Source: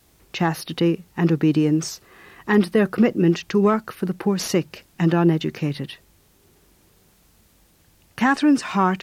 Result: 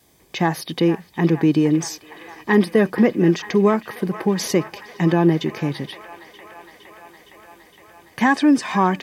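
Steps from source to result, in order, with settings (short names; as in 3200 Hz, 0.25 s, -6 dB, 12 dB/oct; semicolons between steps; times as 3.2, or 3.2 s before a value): notch comb 1400 Hz; band-limited delay 0.463 s, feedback 78%, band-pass 1500 Hz, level -12 dB; gain +2.5 dB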